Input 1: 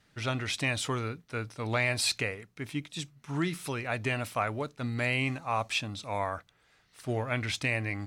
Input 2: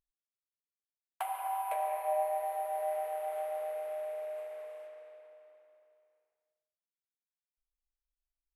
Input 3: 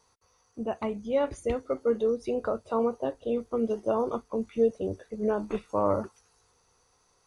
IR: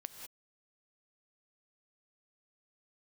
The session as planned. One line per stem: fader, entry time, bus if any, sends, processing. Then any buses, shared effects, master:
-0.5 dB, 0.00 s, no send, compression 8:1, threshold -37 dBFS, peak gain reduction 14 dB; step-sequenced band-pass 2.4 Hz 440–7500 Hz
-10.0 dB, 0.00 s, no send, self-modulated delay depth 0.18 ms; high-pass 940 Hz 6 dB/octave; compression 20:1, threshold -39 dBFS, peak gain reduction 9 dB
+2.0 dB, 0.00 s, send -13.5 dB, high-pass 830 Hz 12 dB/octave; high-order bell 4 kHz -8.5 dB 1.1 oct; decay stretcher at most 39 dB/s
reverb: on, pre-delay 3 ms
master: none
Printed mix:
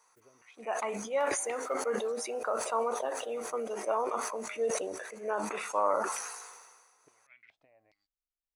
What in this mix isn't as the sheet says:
stem 1 -0.5 dB -> -11.0 dB; stem 2: missing high-pass 940 Hz 6 dB/octave

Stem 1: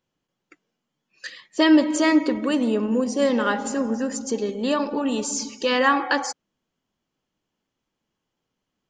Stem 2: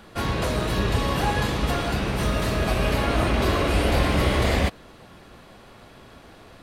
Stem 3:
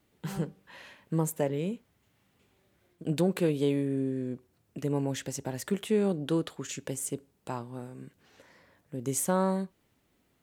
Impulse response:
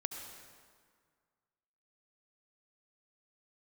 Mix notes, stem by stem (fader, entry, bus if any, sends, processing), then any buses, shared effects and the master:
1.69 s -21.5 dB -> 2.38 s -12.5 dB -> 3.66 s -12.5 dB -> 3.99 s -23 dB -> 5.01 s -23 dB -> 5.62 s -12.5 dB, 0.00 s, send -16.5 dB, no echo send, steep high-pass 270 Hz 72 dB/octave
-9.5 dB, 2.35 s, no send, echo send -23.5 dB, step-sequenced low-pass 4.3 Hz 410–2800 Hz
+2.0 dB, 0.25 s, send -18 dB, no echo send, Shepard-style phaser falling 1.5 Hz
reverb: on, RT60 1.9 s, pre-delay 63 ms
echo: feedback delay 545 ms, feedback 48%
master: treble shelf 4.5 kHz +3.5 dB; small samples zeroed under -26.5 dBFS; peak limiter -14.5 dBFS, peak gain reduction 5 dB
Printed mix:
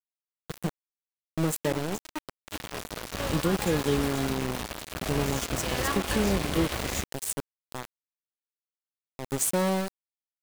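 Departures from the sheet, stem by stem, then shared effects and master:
stem 1: send off; stem 2: missing step-sequenced low-pass 4.3 Hz 410–2800 Hz; stem 3: send -18 dB -> -24 dB

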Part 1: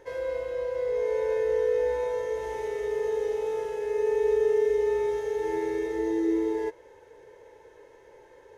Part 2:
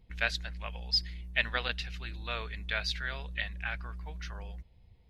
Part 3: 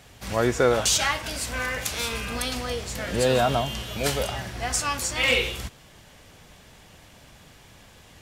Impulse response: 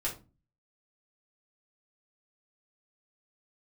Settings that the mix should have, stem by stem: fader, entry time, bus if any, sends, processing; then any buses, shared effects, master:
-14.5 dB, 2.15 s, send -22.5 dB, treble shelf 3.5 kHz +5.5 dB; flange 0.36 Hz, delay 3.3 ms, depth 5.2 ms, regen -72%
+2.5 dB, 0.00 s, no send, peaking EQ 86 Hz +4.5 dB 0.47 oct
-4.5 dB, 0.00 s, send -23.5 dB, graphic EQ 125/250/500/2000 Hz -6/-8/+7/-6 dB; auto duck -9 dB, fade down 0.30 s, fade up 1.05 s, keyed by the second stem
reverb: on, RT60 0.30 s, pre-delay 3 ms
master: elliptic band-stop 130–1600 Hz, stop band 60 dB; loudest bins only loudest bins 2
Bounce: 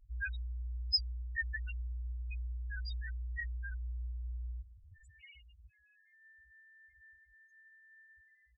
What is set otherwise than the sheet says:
stem 1: missing flange 0.36 Hz, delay 3.3 ms, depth 5.2 ms, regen -72%; stem 3 -4.5 dB -> -15.0 dB; reverb return -6.5 dB

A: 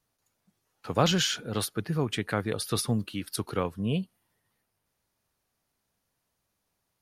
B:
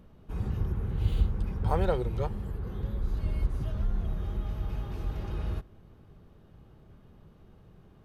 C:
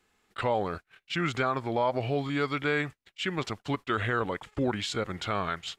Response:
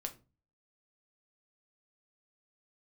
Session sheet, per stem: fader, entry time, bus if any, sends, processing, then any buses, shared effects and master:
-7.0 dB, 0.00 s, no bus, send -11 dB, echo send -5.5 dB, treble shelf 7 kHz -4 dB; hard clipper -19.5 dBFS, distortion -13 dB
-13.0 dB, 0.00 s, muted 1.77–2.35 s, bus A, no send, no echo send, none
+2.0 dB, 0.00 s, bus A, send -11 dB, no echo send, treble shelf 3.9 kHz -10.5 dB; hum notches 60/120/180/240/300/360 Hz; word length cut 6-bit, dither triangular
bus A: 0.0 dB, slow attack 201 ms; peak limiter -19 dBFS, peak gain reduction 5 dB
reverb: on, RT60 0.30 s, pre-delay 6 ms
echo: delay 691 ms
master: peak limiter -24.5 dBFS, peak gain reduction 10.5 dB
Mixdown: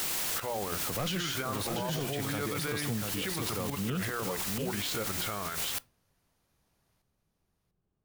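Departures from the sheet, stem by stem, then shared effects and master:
stem A -7.0 dB -> +1.5 dB; stem B -13.0 dB -> -25.0 dB; stem C: missing treble shelf 3.9 kHz -10.5 dB

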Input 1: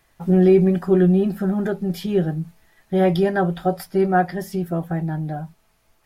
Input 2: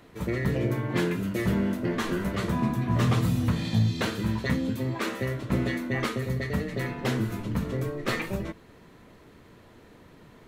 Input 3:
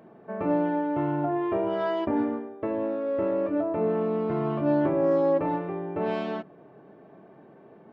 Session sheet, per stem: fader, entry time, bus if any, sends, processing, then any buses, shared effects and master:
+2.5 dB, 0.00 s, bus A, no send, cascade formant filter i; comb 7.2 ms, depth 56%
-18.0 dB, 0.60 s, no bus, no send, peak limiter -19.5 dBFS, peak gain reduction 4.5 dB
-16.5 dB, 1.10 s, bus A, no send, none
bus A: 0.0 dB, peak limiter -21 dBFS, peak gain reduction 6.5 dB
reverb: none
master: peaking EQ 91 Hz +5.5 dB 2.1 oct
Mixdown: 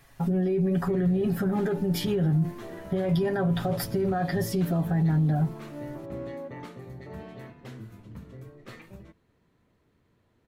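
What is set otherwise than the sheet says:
stem 1: missing cascade formant filter i; stem 2: missing peak limiter -19.5 dBFS, peak gain reduction 4.5 dB

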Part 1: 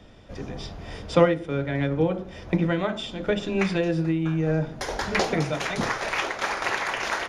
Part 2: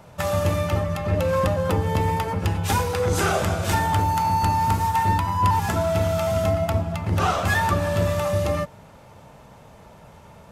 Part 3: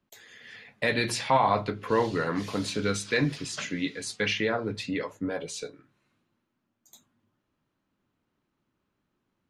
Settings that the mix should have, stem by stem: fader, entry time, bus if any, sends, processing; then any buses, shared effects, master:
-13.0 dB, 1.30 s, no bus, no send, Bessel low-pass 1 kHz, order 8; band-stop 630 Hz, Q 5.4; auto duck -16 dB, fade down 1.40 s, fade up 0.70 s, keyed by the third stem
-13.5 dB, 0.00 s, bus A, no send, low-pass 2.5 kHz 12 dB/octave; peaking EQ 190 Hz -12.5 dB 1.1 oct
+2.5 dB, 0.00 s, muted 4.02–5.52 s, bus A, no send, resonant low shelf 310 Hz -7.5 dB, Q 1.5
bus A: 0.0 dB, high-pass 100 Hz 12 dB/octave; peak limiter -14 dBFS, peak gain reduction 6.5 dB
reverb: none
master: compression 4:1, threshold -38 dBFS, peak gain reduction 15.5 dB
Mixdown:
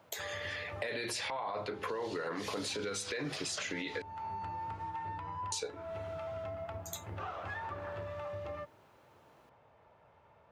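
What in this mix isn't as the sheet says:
stem 1: entry 1.30 s -> 0.75 s; stem 3 +2.5 dB -> +13.5 dB

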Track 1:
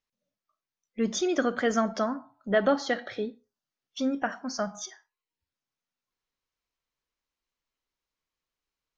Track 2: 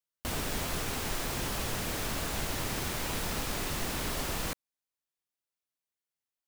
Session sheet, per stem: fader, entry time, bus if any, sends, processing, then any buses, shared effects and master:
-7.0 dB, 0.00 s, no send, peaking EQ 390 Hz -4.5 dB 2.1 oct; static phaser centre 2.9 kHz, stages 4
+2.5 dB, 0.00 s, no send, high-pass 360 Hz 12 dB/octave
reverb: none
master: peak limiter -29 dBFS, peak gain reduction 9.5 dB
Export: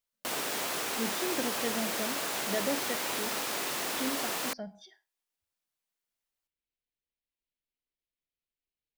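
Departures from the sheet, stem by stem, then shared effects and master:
stem 1: missing peaking EQ 390 Hz -4.5 dB 2.1 oct; master: missing peak limiter -29 dBFS, peak gain reduction 9.5 dB

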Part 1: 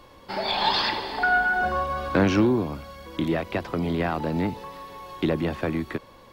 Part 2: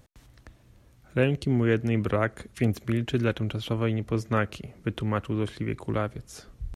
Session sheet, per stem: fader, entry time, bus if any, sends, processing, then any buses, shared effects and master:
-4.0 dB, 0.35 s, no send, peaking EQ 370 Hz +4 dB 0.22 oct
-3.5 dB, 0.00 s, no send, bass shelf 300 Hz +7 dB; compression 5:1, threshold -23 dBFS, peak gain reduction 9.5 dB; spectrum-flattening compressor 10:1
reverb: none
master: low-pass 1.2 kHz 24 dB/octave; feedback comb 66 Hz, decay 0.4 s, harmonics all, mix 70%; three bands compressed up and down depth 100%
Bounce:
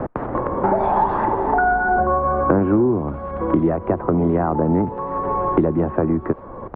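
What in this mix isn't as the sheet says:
stem 1 -4.0 dB -> +7.0 dB; master: missing feedback comb 66 Hz, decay 0.4 s, harmonics all, mix 70%

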